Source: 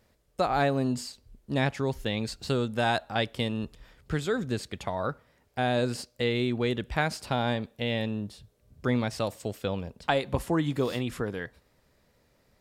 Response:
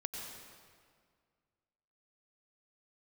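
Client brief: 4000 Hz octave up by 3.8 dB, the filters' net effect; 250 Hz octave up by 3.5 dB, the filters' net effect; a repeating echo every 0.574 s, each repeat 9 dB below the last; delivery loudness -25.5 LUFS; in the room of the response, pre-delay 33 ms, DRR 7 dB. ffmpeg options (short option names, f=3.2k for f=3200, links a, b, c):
-filter_complex "[0:a]equalizer=f=250:t=o:g=4,equalizer=f=4k:t=o:g=4.5,aecho=1:1:574|1148|1722|2296:0.355|0.124|0.0435|0.0152,asplit=2[a][b];[1:a]atrim=start_sample=2205,adelay=33[c];[b][c]afir=irnorm=-1:irlink=0,volume=-7dB[d];[a][d]amix=inputs=2:normalize=0,volume=1.5dB"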